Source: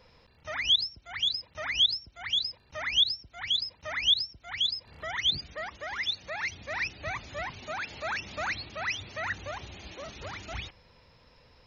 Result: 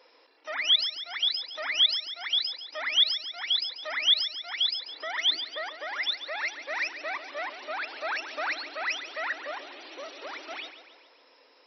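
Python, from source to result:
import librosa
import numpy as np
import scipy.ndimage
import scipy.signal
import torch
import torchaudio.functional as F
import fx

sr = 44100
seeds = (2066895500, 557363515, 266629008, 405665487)

y = fx.brickwall_bandpass(x, sr, low_hz=260.0, high_hz=5900.0)
y = fx.echo_feedback(y, sr, ms=140, feedback_pct=54, wet_db=-12.0)
y = y * 10.0 ** (1.5 / 20.0)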